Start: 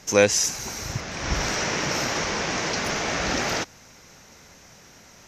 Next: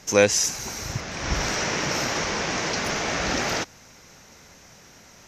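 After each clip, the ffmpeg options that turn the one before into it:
ffmpeg -i in.wav -af anull out.wav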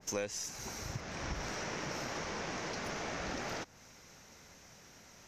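ffmpeg -i in.wav -af "acompressor=threshold=-28dB:ratio=4,aeval=exprs='0.141*(cos(1*acos(clip(val(0)/0.141,-1,1)))-cos(1*PI/2))+0.00562*(cos(4*acos(clip(val(0)/0.141,-1,1)))-cos(4*PI/2))':channel_layout=same,adynamicequalizer=threshold=0.00631:dfrequency=1800:dqfactor=0.7:tfrequency=1800:tqfactor=0.7:attack=5:release=100:ratio=0.375:range=2:mode=cutabove:tftype=highshelf,volume=-7.5dB" out.wav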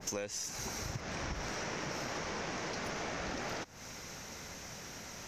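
ffmpeg -i in.wav -af "acompressor=threshold=-50dB:ratio=3,volume=10.5dB" out.wav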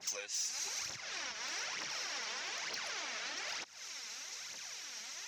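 ffmpeg -i in.wav -af "aphaser=in_gain=1:out_gain=1:delay=4.8:decay=0.6:speed=1.1:type=triangular,bandpass=frequency=4100:width_type=q:width=0.84:csg=0,asoftclip=type=hard:threshold=-34.5dB,volume=3dB" out.wav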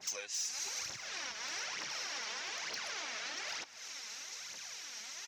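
ffmpeg -i in.wav -af "aecho=1:1:606:0.119" out.wav

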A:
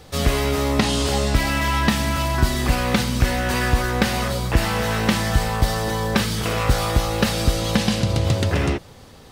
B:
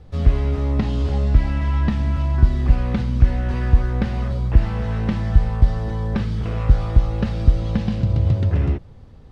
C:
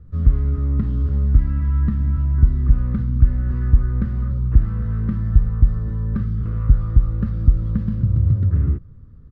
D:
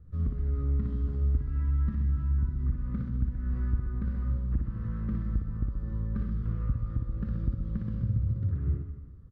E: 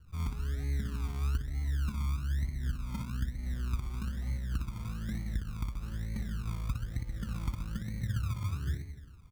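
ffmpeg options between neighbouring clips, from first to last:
ffmpeg -i in.wav -filter_complex "[0:a]aemphasis=mode=reproduction:type=riaa,acrossover=split=6900[link_01][link_02];[link_02]acompressor=threshold=-56dB:ratio=4:attack=1:release=60[link_03];[link_01][link_03]amix=inputs=2:normalize=0,volume=-10dB" out.wav
ffmpeg -i in.wav -filter_complex "[0:a]firequalizer=gain_entry='entry(130,0);entry(800,-24);entry(1200,-5);entry(2500,-22)':delay=0.05:min_phase=1,asplit=2[link_01][link_02];[link_02]volume=8dB,asoftclip=hard,volume=-8dB,volume=-8.5dB[link_03];[link_01][link_03]amix=inputs=2:normalize=0,volume=-1.5dB" out.wav
ffmpeg -i in.wav -filter_complex "[0:a]acompressor=threshold=-18dB:ratio=6,asplit=2[link_01][link_02];[link_02]aecho=0:1:60|129|208.4|299.6|404.5:0.631|0.398|0.251|0.158|0.1[link_03];[link_01][link_03]amix=inputs=2:normalize=0,volume=-9dB" out.wav
ffmpeg -i in.wav -af "acrusher=samples=30:mix=1:aa=0.000001:lfo=1:lforange=18:lforate=1.1,volume=-5dB" out.wav

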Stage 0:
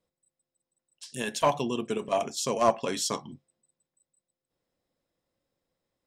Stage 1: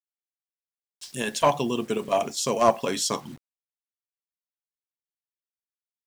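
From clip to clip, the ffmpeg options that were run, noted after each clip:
ffmpeg -i in.wav -af "acrusher=bits=8:mix=0:aa=0.000001,volume=3.5dB" out.wav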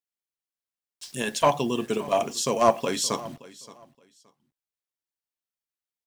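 ffmpeg -i in.wav -af "aecho=1:1:572|1144:0.106|0.0222" out.wav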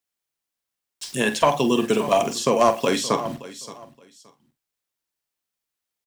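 ffmpeg -i in.wav -filter_complex "[0:a]acrossover=split=140|3000[link_01][link_02][link_03];[link_01]acompressor=threshold=-49dB:ratio=4[link_04];[link_02]acompressor=threshold=-23dB:ratio=4[link_05];[link_03]acompressor=threshold=-39dB:ratio=4[link_06];[link_04][link_05][link_06]amix=inputs=3:normalize=0,asplit=2[link_07][link_08];[link_08]adelay=46,volume=-11.5dB[link_09];[link_07][link_09]amix=inputs=2:normalize=0,volume=8dB" out.wav

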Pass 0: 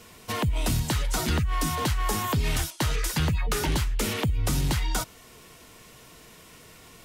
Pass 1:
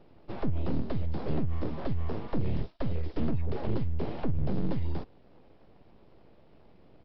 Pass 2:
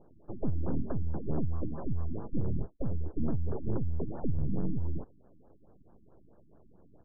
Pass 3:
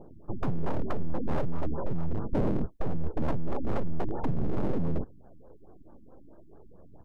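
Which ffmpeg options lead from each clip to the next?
ffmpeg -i in.wav -af "firequalizer=gain_entry='entry(340,0);entry(1300,-26);entry(2000,-19);entry(4300,-23)':delay=0.05:min_phase=1,aresample=11025,aeval=exprs='abs(val(0))':channel_layout=same,aresample=44100" out.wav
ffmpeg -i in.wav -af "afftfilt=real='re*lt(b*sr/1024,320*pow(1800/320,0.5+0.5*sin(2*PI*4.6*pts/sr)))':imag='im*lt(b*sr/1024,320*pow(1800/320,0.5+0.5*sin(2*PI*4.6*pts/sr)))':win_size=1024:overlap=0.75,volume=-1.5dB" out.wav
ffmpeg -i in.wav -af "equalizer=frequency=400:width=0.31:gain=2.5,aphaser=in_gain=1:out_gain=1:delay=4:decay=0.42:speed=0.41:type=triangular,aeval=exprs='0.0708*(abs(mod(val(0)/0.0708+3,4)-2)-1)':channel_layout=same,volume=4dB" out.wav

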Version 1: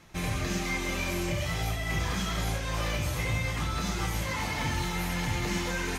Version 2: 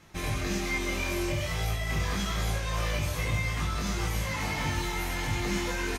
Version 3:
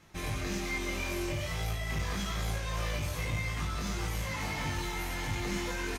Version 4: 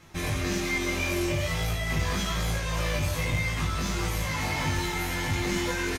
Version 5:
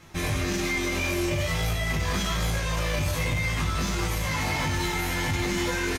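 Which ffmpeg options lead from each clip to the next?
ffmpeg -i in.wav -filter_complex "[0:a]asplit=2[link_01][link_02];[link_02]adelay=20,volume=-4dB[link_03];[link_01][link_03]amix=inputs=2:normalize=0,volume=-1.5dB" out.wav
ffmpeg -i in.wav -af "aeval=exprs='clip(val(0),-1,0.0501)':channel_layout=same,volume=-3.5dB" out.wav
ffmpeg -i in.wav -filter_complex "[0:a]asplit=2[link_01][link_02];[link_02]adelay=12,volume=-7dB[link_03];[link_01][link_03]amix=inputs=2:normalize=0,volume=5.5dB" out.wav
ffmpeg -i in.wav -af "alimiter=limit=-20.5dB:level=0:latency=1:release=22,volume=2.5dB" out.wav

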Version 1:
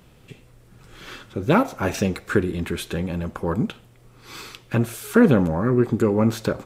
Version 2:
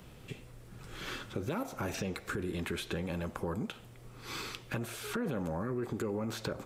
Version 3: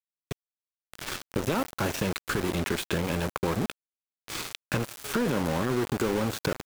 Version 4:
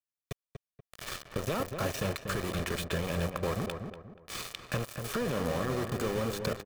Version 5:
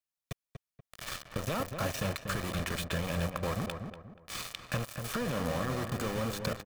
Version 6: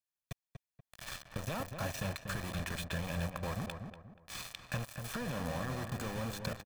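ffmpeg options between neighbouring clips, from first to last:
ffmpeg -i in.wav -filter_complex "[0:a]asplit=2[link_01][link_02];[link_02]acompressor=threshold=-27dB:ratio=6,volume=1dB[link_03];[link_01][link_03]amix=inputs=2:normalize=0,alimiter=limit=-12dB:level=0:latency=1:release=11,acrossover=split=410|5400[link_04][link_05][link_06];[link_04]acompressor=threshold=-30dB:ratio=4[link_07];[link_05]acompressor=threshold=-31dB:ratio=4[link_08];[link_06]acompressor=threshold=-43dB:ratio=4[link_09];[link_07][link_08][link_09]amix=inputs=3:normalize=0,volume=-7dB" out.wav
ffmpeg -i in.wav -af "aeval=exprs='val(0)*gte(abs(val(0)),0.0158)':channel_layout=same,volume=8.5dB" out.wav
ffmpeg -i in.wav -filter_complex "[0:a]aecho=1:1:1.7:0.42,asplit=2[link_01][link_02];[link_02]adelay=240,lowpass=frequency=1600:poles=1,volume=-6dB,asplit=2[link_03][link_04];[link_04]adelay=240,lowpass=frequency=1600:poles=1,volume=0.36,asplit=2[link_05][link_06];[link_06]adelay=240,lowpass=frequency=1600:poles=1,volume=0.36,asplit=2[link_07][link_08];[link_08]adelay=240,lowpass=frequency=1600:poles=1,volume=0.36[link_09];[link_03][link_05][link_07][link_09]amix=inputs=4:normalize=0[link_10];[link_01][link_10]amix=inputs=2:normalize=0,volume=-5dB" out.wav
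ffmpeg -i in.wav -af "equalizer=frequency=400:width_type=o:width=0.44:gain=-8" out.wav
ffmpeg -i in.wav -af "aecho=1:1:1.2:0.31,volume=-5dB" out.wav

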